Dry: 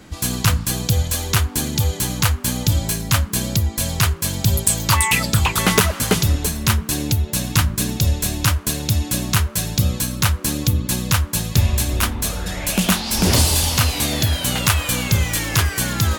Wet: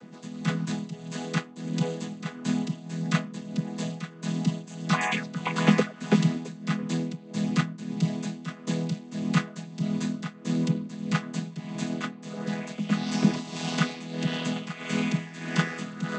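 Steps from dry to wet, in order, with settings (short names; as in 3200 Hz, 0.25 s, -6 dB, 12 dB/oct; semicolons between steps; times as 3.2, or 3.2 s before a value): chord vocoder major triad, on E3; dynamic EQ 2100 Hz, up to +4 dB, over -37 dBFS, Q 0.78; tremolo 1.6 Hz, depth 79%; gain -3 dB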